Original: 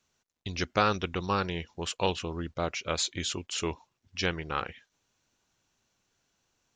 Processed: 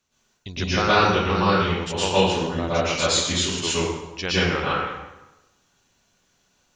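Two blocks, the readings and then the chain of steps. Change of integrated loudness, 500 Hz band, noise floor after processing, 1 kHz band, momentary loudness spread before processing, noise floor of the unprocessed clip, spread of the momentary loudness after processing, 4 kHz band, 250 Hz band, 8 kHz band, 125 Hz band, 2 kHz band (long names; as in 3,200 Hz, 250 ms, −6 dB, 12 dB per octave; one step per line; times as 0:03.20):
+9.5 dB, +10.5 dB, −67 dBFS, +9.5 dB, 10 LU, −81 dBFS, 10 LU, +10.5 dB, +10.5 dB, +10.0 dB, +10.0 dB, +10.5 dB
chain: dense smooth reverb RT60 1 s, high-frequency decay 0.75×, pre-delay 100 ms, DRR −9.5 dB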